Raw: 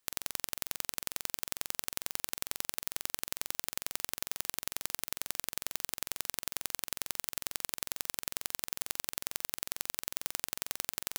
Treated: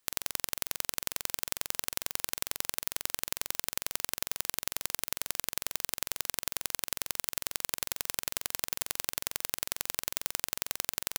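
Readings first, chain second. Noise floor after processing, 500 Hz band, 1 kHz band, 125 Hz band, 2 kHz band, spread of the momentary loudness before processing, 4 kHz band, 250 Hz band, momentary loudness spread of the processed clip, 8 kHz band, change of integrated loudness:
−75 dBFS, +3.5 dB, +3.0 dB, +3.0 dB, +3.5 dB, 1 LU, +3.0 dB, +2.0 dB, 1 LU, +3.0 dB, +3.0 dB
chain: single-tap delay 92 ms −15.5 dB
level +3 dB

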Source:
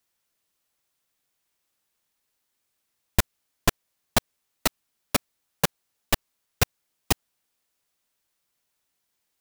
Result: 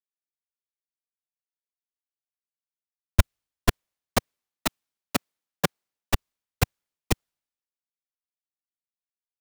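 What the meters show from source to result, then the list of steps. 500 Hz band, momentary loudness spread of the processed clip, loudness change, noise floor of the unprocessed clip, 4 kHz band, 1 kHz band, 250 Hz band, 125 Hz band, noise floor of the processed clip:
−0.5 dB, 6 LU, −1.0 dB, −78 dBFS, −3.5 dB, −1.5 dB, +0.5 dB, +3.5 dB, below −85 dBFS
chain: each half-wave held at its own peak
multiband upward and downward expander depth 100%
level −8.5 dB

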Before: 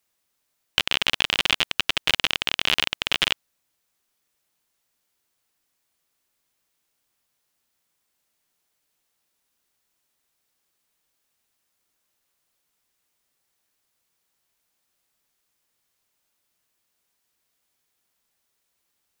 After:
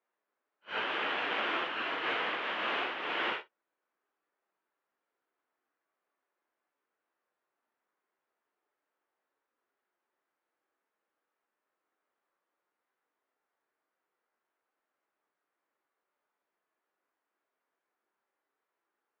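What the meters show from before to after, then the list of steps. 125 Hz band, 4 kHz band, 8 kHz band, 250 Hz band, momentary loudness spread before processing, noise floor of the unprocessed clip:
below −15 dB, −16.0 dB, below −30 dB, −4.0 dB, 3 LU, −76 dBFS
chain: random phases in long frames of 200 ms
Chebyshev band-pass filter 340–1,500 Hz, order 2

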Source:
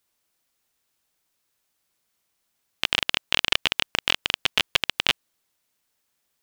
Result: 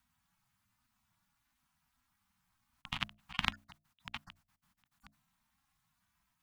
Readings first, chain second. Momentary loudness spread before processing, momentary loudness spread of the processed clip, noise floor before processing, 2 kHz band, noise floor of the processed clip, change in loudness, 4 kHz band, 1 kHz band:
3 LU, 19 LU, −75 dBFS, −18.0 dB, −82 dBFS, −16.0 dB, −21.5 dB, −13.0 dB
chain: harmonic-percussive split with one part muted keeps harmonic
mains-hum notches 60/120/180/240/300/360/420/480/540 Hz
ring modulation 150 Hz
Chebyshev band-stop filter 200–1,000 Hz, order 2
tilt shelving filter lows +9.5 dB, about 1,500 Hz
level +9 dB

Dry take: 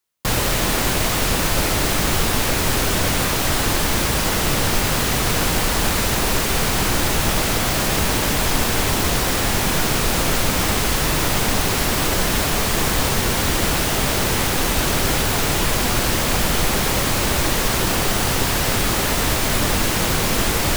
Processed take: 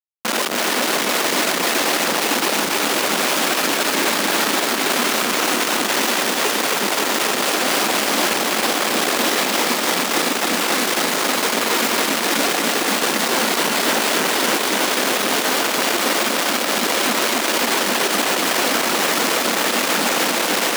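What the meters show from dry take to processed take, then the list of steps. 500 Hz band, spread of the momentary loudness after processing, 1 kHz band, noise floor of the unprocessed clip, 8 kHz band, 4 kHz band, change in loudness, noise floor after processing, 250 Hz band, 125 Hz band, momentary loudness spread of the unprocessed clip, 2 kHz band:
+2.5 dB, 1 LU, +3.0 dB, −21 dBFS, +0.5 dB, +2.5 dB, +1.0 dB, −22 dBFS, 0.0 dB, −16.5 dB, 0 LU, +3.5 dB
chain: phase shifter 1.9 Hz, delay 4.2 ms, feedback 52%
in parallel at −2.5 dB: brickwall limiter −10 dBFS, peak gain reduction 9 dB
on the sum: comparator with hysteresis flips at −19 dBFS
Butterworth high-pass 210 Hz 36 dB per octave
feedback echo at a low word length 279 ms, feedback 80%, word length 6 bits, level −5 dB
level −6 dB

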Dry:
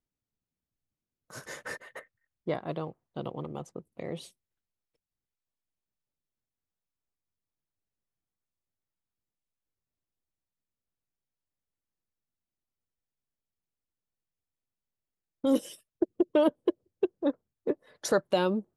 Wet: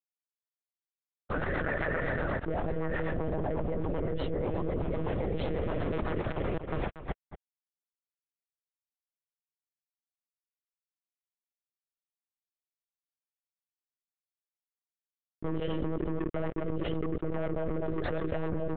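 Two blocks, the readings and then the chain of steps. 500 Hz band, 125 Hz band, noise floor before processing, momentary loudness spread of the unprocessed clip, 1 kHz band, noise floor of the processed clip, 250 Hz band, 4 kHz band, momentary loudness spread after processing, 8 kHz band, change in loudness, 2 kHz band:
−1.0 dB, +10.5 dB, below −85 dBFS, 18 LU, +1.5 dB, below −85 dBFS, −1.5 dB, −4.5 dB, 4 LU, below −30 dB, −2.0 dB, +6.0 dB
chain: feedback delay that plays each chunk backwards 604 ms, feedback 48%, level −1 dB
high-shelf EQ 2,800 Hz −8.5 dB
bit reduction 9 bits
gain into a clipping stage and back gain 28 dB
high-frequency loss of the air 480 metres
one-pitch LPC vocoder at 8 kHz 160 Hz
slap from a distant wall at 40 metres, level −15 dB
rotating-speaker cabinet horn 8 Hz
envelope flattener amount 100%
level −2 dB

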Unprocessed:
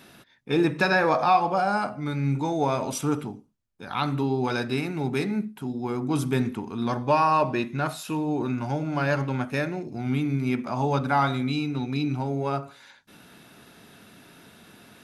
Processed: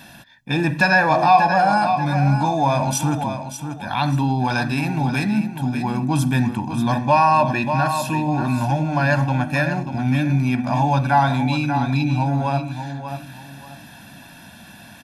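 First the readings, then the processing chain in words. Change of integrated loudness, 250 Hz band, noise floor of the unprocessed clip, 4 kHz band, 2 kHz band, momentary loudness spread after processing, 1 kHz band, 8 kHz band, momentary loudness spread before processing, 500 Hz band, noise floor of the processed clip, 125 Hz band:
+6.5 dB, +5.5 dB, −55 dBFS, +5.5 dB, +8.0 dB, 11 LU, +8.0 dB, +9.0 dB, 9 LU, +3.0 dB, −43 dBFS, +9.0 dB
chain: repeating echo 587 ms, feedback 27%, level −10 dB
in parallel at −1 dB: brickwall limiter −19.5 dBFS, peak gain reduction 10 dB
on the sum: comb filter 1.2 ms, depth 86%

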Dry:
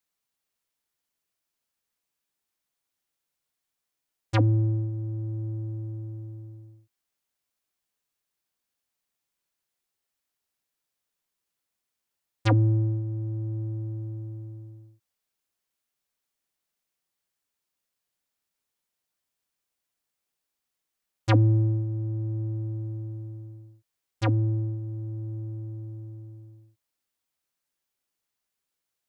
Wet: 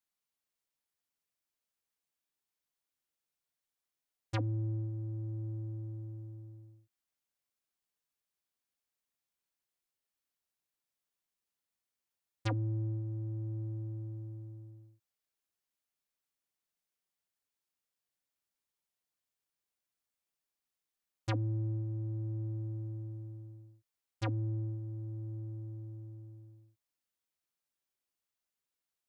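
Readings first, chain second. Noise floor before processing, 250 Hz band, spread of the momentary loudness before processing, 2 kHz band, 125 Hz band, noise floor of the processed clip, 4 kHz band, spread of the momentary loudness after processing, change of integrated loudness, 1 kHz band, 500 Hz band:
−84 dBFS, −11.0 dB, 19 LU, −10.5 dB, −10.0 dB, below −85 dBFS, −9.5 dB, 16 LU, −10.5 dB, −11.5 dB, −11.0 dB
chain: downward compressor 5 to 1, threshold −24 dBFS, peak gain reduction 8.5 dB
level −7 dB

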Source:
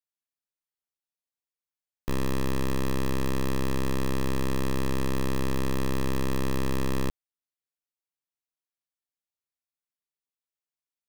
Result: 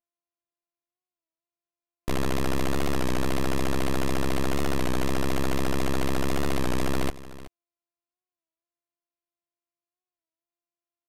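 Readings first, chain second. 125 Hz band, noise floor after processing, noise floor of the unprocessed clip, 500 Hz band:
0.0 dB, below −85 dBFS, below −85 dBFS, +2.5 dB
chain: samples sorted by size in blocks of 128 samples
downsampling to 32,000 Hz
noise reduction from a noise print of the clip's start 7 dB
on a send: single-tap delay 374 ms −16.5 dB
on the sum: wow of a warped record 33 1/3 rpm, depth 100 cents
level +1.5 dB

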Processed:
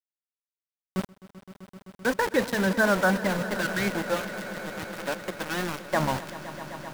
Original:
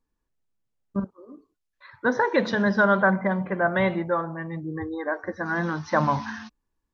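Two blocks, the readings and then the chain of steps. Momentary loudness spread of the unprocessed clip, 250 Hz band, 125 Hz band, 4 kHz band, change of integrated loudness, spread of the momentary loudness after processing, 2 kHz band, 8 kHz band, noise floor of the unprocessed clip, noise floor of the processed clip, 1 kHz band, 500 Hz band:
12 LU, −3.0 dB, −3.5 dB, +5.5 dB, −3.0 dB, 15 LU, −2.0 dB, can't be measured, −80 dBFS, below −85 dBFS, −4.5 dB, −3.0 dB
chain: time-frequency box erased 0:03.62–0:03.96, 490–1,300 Hz
dynamic equaliser 1,100 Hz, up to −6 dB, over −41 dBFS, Q 4.3
pitch vibrato 2.9 Hz 100 cents
centre clipping without the shift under −25 dBFS
on a send: echo that builds up and dies away 129 ms, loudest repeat 5, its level −17.5 dB
on the sum: level −2 dB

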